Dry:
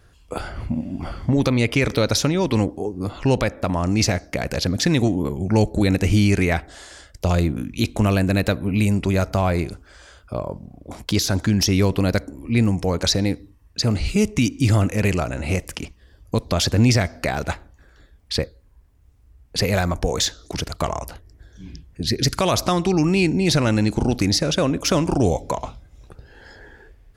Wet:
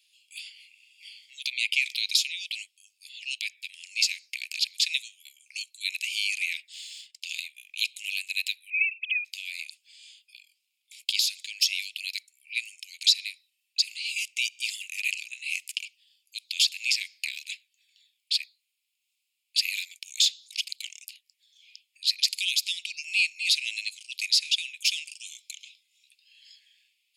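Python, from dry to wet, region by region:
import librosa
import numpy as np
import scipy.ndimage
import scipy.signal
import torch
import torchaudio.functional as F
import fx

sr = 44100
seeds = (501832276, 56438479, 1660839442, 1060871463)

y = fx.chain(x, sr, fx.lowpass(hz=8500.0, slope=12),
    fx.leveller(passes=1), at=(6.73, 7.26))
y = fx.chain(y, sr, fx.sine_speech(),
    fx.high_shelf(hz=2800.0, db=9.5), at=(8.7, 9.25))
y = scipy.signal.sosfilt(scipy.signal.butter(12, 2400.0, 'highpass', fs=sr, output='sos'), y)
y = fx.tilt_eq(y, sr, slope=-3.0)
y = fx.notch(y, sr, hz=5900.0, q=5.7)
y = y * librosa.db_to_amplitude(8.0)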